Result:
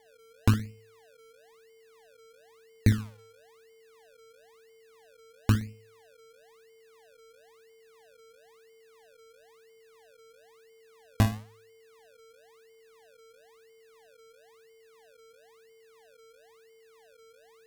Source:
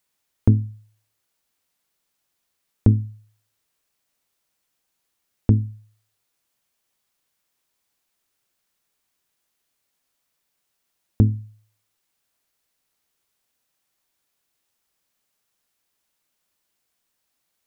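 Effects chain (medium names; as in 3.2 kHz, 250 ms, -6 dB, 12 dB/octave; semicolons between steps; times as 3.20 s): whistle 450 Hz -52 dBFS; flutter echo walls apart 10.3 m, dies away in 0.35 s; decimation with a swept rate 33×, swing 100% 1 Hz; trim -6.5 dB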